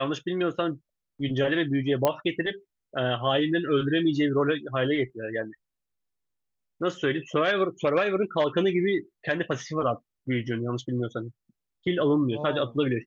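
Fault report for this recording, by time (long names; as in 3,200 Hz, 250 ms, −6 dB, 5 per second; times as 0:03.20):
0:02.05: click −9 dBFS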